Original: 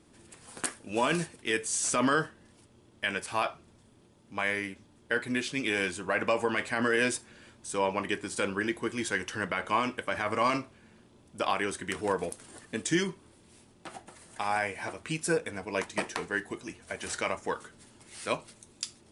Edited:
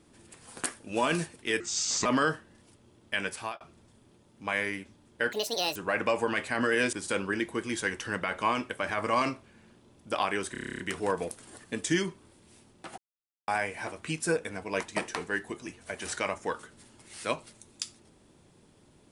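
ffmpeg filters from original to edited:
-filter_complex "[0:a]asplit=18[a][b][c][d][e][f][g][h][i][j][k][l][m][n][o][p][q][r];[a]atrim=end=1.604[s];[b]atrim=start=1.6:end=1.96,asetpts=PTS-STARTPTS,asetrate=34839,aresample=44100,atrim=end_sample=20096,asetpts=PTS-STARTPTS[t];[c]atrim=start=1.956:end=3.51,asetpts=PTS-STARTPTS,afade=t=out:st=1.294:d=0.26[u];[d]atrim=start=3.51:end=5.234,asetpts=PTS-STARTPTS,afade=t=in:d=0.004:c=hsin[v];[e]atrim=start=5.23:end=5.97,asetpts=PTS-STARTPTS,asetrate=75411,aresample=44100,atrim=end_sample=19084,asetpts=PTS-STARTPTS[w];[f]atrim=start=5.966:end=7.142[x];[g]atrim=start=8.208:end=11.832[y];[h]atrim=start=11.798:end=11.832[z];[i]atrim=start=11.798:end=11.832[aa];[j]atrim=start=11.798:end=11.832[ab];[k]atrim=start=11.798:end=11.832[ac];[l]atrim=start=11.798:end=11.832[ad];[m]atrim=start=11.798:end=11.832[ae];[n]atrim=start=11.798:end=11.832[af];[o]atrim=start=11.798:end=11.832[ag];[p]atrim=start=11.798:end=13.99,asetpts=PTS-STARTPTS,afade=t=out:st=2.188:d=0.004:c=hsin[ah];[q]atrim=start=13.99:end=14.49,asetpts=PTS-STARTPTS,volume=0[ai];[r]atrim=start=14.49,asetpts=PTS-STARTPTS,afade=t=in:d=0.004:c=hsin[aj];[s][t]acrossfade=d=0.004:c1=hsin:c2=hsin[ak];[u][v]concat=n=2:v=0:a=1[al];[ak][al]acrossfade=d=0.004:c1=hsin:c2=hsin[am];[am][w]acrossfade=d=0.004:c1=hsin:c2=hsin[an];[an][x]acrossfade=d=0.004:c1=hsin:c2=hsin[ao];[ao][y]acrossfade=d=0.004:c1=hsin:c2=hsin[ap];[ap][z]acrossfade=d=0.004:c1=hsin:c2=hsin[aq];[aq][aa]acrossfade=d=0.004:c1=hsin:c2=hsin[ar];[ar][ab]acrossfade=d=0.004:c1=hsin:c2=hsin[as];[as][ac]acrossfade=d=0.004:c1=hsin:c2=hsin[at];[at][ad]acrossfade=d=0.004:c1=hsin:c2=hsin[au];[au][ae]acrossfade=d=0.004:c1=hsin:c2=hsin[av];[av][af]acrossfade=d=0.004:c1=hsin:c2=hsin[aw];[aw][ag]acrossfade=d=0.004:c1=hsin:c2=hsin[ax];[ah][ai][aj]concat=n=3:v=0:a=1[ay];[ax][ay]acrossfade=d=0.004:c1=hsin:c2=hsin"

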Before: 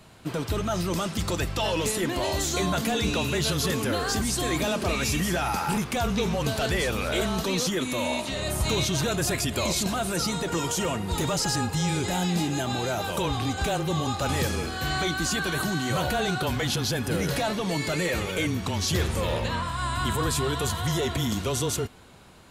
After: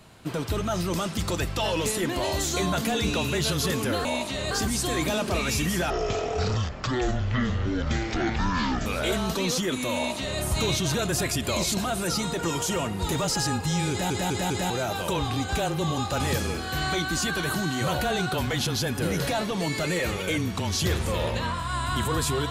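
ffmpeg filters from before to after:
-filter_complex "[0:a]asplit=9[a][b][c][d][e][f][g][h][i];[a]atrim=end=4.052[j];[b]atrim=start=8.028:end=8.492[k];[c]atrim=start=4.048:end=5.444[l];[d]atrim=start=5.44:end=6.95,asetpts=PTS-STARTPTS,asetrate=22491,aresample=44100[m];[e]atrim=start=6.946:end=12.192[n];[f]atrim=start=11.988:end=12.192[o];[g]atrim=start=11.988:end=12.192[p];[h]atrim=start=11.988:end=12.192[q];[i]atrim=start=12.788[r];[j][k]acrossfade=d=0.004:c1=hsin:c2=hsin[s];[s][l]acrossfade=d=0.004:c1=hsin:c2=hsin[t];[t][m]acrossfade=d=0.004:c1=hsin:c2=hsin[u];[u][n]acrossfade=d=0.004:c1=hsin:c2=hsin[v];[v][o]acrossfade=d=0.004:c1=hsin:c2=hsin[w];[w][p]acrossfade=d=0.004:c1=hsin:c2=hsin[x];[x][q]acrossfade=d=0.004:c1=hsin:c2=hsin[y];[y][r]acrossfade=d=0.004:c1=hsin:c2=hsin"

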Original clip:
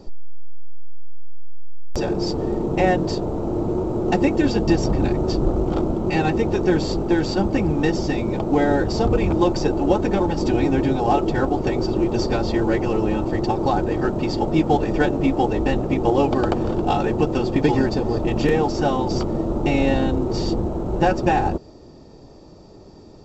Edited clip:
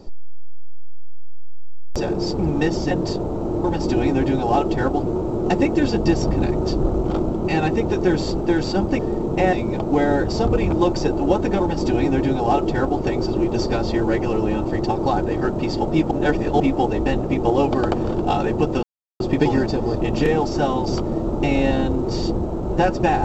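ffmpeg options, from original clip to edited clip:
-filter_complex "[0:a]asplit=10[a][b][c][d][e][f][g][h][i][j];[a]atrim=end=2.392[k];[b]atrim=start=7.608:end=8.132[l];[c]atrim=start=2.928:end=3.662[m];[d]atrim=start=10.208:end=11.612[n];[e]atrim=start=3.658:end=7.612[o];[f]atrim=start=2.388:end=2.932[p];[g]atrim=start=8.128:end=14.712[q];[h]atrim=start=14.708:end=15.202,asetpts=PTS-STARTPTS,areverse[r];[i]atrim=start=15.198:end=17.43,asetpts=PTS-STARTPTS,afade=t=out:st=2.228:d=0.004:c=hsin,apad=pad_dur=0.37[s];[j]atrim=start=17.43,asetpts=PTS-STARTPTS,afade=t=in:d=0.004:c=hsin[t];[k][l]acrossfade=d=0.004:c1=hsin:c2=hsin[u];[u][m]acrossfade=d=0.004:c1=hsin:c2=hsin[v];[v][n]acrossfade=d=0.004:c1=hsin:c2=hsin[w];[w][o]acrossfade=d=0.004:c1=hsin:c2=hsin[x];[x][p]acrossfade=d=0.004:c1=hsin:c2=hsin[y];[y][q]acrossfade=d=0.004:c1=hsin:c2=hsin[z];[z][r]acrossfade=d=0.004:c1=hsin:c2=hsin[aa];[s][t]concat=n=2:v=0:a=1[ab];[aa][ab]acrossfade=d=0.004:c1=hsin:c2=hsin"

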